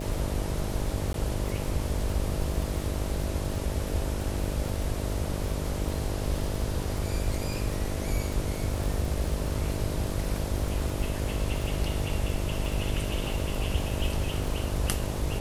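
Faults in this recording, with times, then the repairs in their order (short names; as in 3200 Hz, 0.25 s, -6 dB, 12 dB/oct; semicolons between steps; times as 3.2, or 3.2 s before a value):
buzz 50 Hz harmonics 13 -34 dBFS
crackle 52/s -33 dBFS
1.13–1.14 gap 12 ms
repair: de-click; de-hum 50 Hz, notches 13; interpolate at 1.13, 12 ms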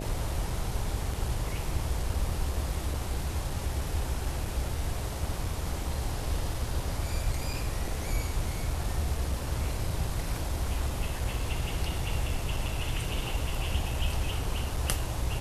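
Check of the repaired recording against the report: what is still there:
none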